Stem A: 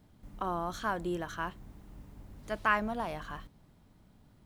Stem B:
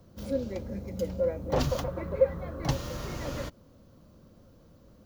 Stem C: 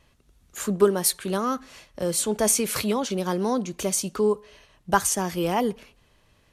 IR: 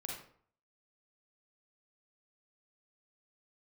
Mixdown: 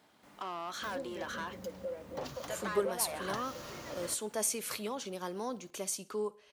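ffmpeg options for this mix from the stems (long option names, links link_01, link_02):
-filter_complex "[0:a]acompressor=threshold=-34dB:ratio=6,asplit=2[link_01][link_02];[link_02]highpass=frequency=720:poles=1,volume=22dB,asoftclip=type=tanh:threshold=-22dB[link_03];[link_01][link_03]amix=inputs=2:normalize=0,lowpass=frequency=5600:poles=1,volume=-6dB,volume=-8dB[link_04];[1:a]acompressor=threshold=-34dB:ratio=3,adelay=650,volume=-2.5dB[link_05];[2:a]adelay=1950,volume=-10.5dB,asplit=2[link_06][link_07];[link_07]volume=-22.5dB,aecho=0:1:63|126|189|252|315:1|0.38|0.144|0.0549|0.0209[link_08];[link_04][link_05][link_06][link_08]amix=inputs=4:normalize=0,highpass=frequency=390:poles=1"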